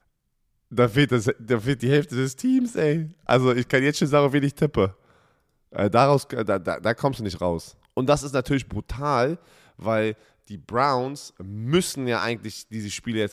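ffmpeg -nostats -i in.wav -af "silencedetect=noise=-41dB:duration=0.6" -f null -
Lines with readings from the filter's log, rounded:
silence_start: 0.00
silence_end: 0.72 | silence_duration: 0.72
silence_start: 4.92
silence_end: 5.72 | silence_duration: 0.80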